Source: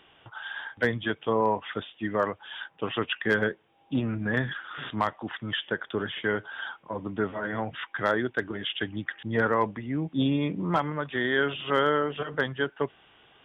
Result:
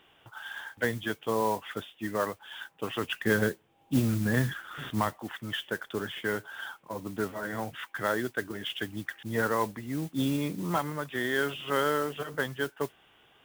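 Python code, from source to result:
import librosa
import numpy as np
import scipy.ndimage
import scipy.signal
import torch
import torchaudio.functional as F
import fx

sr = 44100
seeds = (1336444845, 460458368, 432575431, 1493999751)

y = fx.low_shelf(x, sr, hz=290.0, db=8.5, at=(3.03, 5.18))
y = fx.mod_noise(y, sr, seeds[0], snr_db=17)
y = y * librosa.db_to_amplitude(-3.5)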